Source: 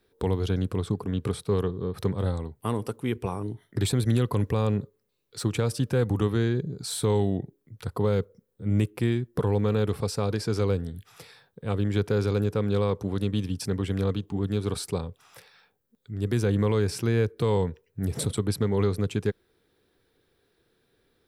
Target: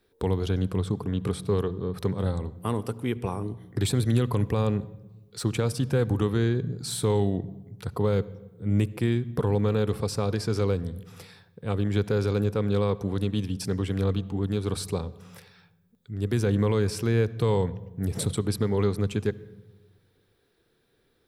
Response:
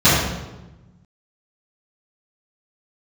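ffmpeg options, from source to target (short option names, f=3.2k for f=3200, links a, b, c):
-filter_complex "[0:a]asplit=2[a][b];[1:a]atrim=start_sample=2205,adelay=63[c];[b][c]afir=irnorm=-1:irlink=0,volume=-45dB[d];[a][d]amix=inputs=2:normalize=0"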